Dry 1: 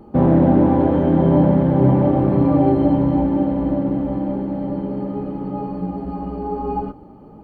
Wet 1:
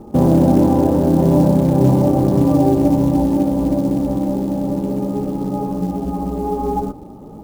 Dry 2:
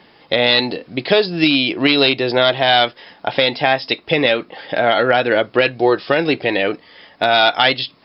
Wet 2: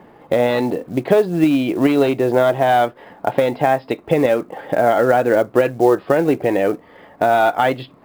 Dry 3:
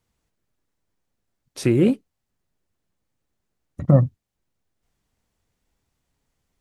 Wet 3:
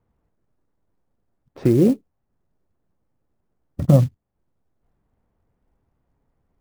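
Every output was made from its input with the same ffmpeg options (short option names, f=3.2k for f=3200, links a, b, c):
-filter_complex "[0:a]lowpass=1.1k,asplit=2[a][b];[b]acompressor=threshold=-25dB:ratio=5,volume=2dB[c];[a][c]amix=inputs=2:normalize=0,acrusher=bits=7:mode=log:mix=0:aa=0.000001,volume=-1dB"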